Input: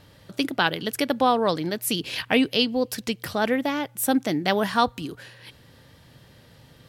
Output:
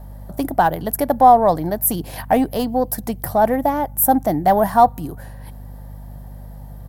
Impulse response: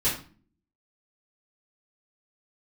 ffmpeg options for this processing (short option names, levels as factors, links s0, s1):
-filter_complex "[0:a]asplit=2[s0][s1];[s1]asoftclip=type=hard:threshold=0.112,volume=0.562[s2];[s0][s2]amix=inputs=2:normalize=0,aeval=exprs='val(0)+0.0126*(sin(2*PI*50*n/s)+sin(2*PI*2*50*n/s)/2+sin(2*PI*3*50*n/s)/3+sin(2*PI*4*50*n/s)/4+sin(2*PI*5*50*n/s)/5)':c=same,firequalizer=gain_entry='entry(130,0);entry(230,-4);entry(450,-6);entry(720,8);entry(1300,-9);entry(1800,-9);entry(2600,-21);entry(13000,7)':delay=0.05:min_phase=1,volume=1.58"